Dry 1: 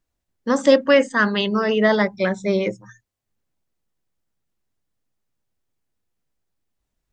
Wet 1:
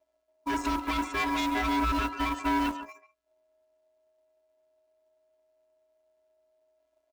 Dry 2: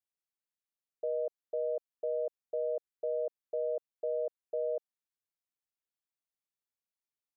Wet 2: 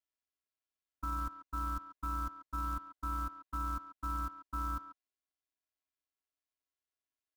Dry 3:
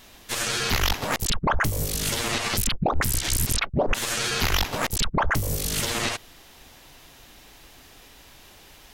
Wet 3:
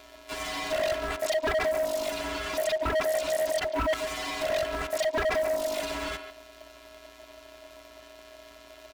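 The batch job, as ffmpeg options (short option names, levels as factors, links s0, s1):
-filter_complex "[0:a]acontrast=40,afftfilt=real='hypot(re,im)*cos(PI*b)':imag='0':win_size=512:overlap=0.75,asoftclip=type=tanh:threshold=0.75,tremolo=f=260:d=0.333,lowpass=f=3600:p=1,acrusher=bits=5:mode=log:mix=0:aa=0.000001,aeval=exprs='val(0)*sin(2*PI*630*n/s)':c=same,alimiter=limit=0.224:level=0:latency=1:release=67,asplit=2[s0][s1];[s1]adelay=140,highpass=300,lowpass=3400,asoftclip=type=hard:threshold=0.0891,volume=0.251[s2];[s0][s2]amix=inputs=2:normalize=0,asoftclip=type=hard:threshold=0.0562,volume=1.26"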